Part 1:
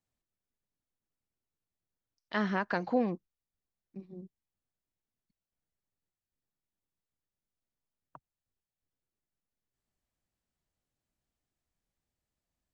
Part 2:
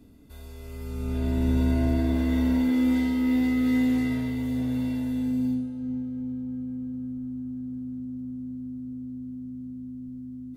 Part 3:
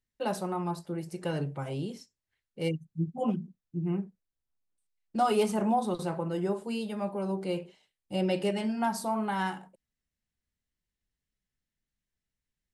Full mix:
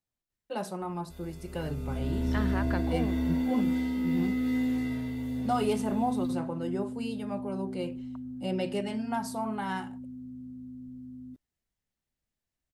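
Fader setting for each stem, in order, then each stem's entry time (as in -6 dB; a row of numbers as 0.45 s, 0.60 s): -3.5 dB, -5.5 dB, -3.0 dB; 0.00 s, 0.80 s, 0.30 s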